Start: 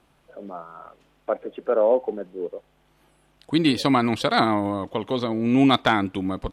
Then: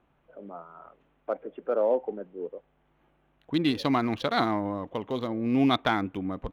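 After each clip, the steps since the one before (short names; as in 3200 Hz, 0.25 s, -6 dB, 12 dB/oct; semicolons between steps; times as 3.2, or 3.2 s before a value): Wiener smoothing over 9 samples; bell 8000 Hz -13 dB 0.34 oct; gain -5.5 dB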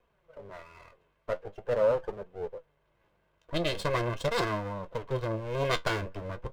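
minimum comb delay 1.9 ms; flange 0.43 Hz, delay 3.9 ms, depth 8.7 ms, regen +55%; gain +3 dB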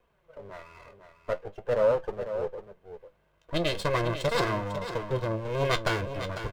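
echo 0.498 s -10 dB; gain +2 dB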